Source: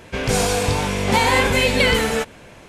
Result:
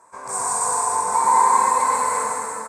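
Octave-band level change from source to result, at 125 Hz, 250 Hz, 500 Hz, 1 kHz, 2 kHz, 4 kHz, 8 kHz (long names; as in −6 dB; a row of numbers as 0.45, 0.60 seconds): below −25 dB, −18.0 dB, −10.0 dB, +6.5 dB, −12.0 dB, −19.0 dB, +5.0 dB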